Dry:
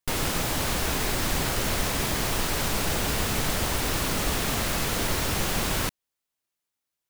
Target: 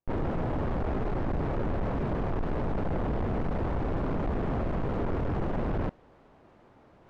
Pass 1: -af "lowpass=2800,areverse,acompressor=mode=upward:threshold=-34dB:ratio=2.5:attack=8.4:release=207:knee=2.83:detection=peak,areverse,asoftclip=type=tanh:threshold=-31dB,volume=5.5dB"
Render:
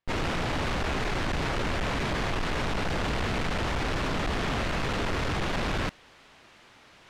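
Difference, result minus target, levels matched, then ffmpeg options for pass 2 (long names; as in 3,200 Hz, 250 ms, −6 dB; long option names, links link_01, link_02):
2,000 Hz band +10.5 dB
-af "lowpass=720,areverse,acompressor=mode=upward:threshold=-34dB:ratio=2.5:attack=8.4:release=207:knee=2.83:detection=peak,areverse,asoftclip=type=tanh:threshold=-31dB,volume=5.5dB"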